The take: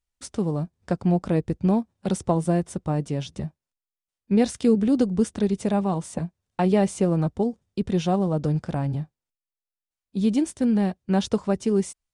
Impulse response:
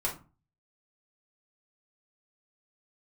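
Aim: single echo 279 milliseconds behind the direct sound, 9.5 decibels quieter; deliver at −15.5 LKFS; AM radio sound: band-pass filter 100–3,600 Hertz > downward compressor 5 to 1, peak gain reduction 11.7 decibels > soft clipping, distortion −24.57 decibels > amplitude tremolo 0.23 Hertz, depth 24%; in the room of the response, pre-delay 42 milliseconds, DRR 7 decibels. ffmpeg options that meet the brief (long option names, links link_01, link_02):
-filter_complex "[0:a]aecho=1:1:279:0.335,asplit=2[link_01][link_02];[1:a]atrim=start_sample=2205,adelay=42[link_03];[link_02][link_03]afir=irnorm=-1:irlink=0,volume=-12.5dB[link_04];[link_01][link_04]amix=inputs=2:normalize=0,highpass=100,lowpass=3600,acompressor=threshold=-25dB:ratio=5,asoftclip=threshold=-17dB,tremolo=f=0.23:d=0.24,volume=16.5dB"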